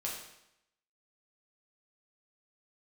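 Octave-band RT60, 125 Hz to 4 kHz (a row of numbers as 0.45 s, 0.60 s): 0.85 s, 0.80 s, 0.80 s, 0.80 s, 0.80 s, 0.80 s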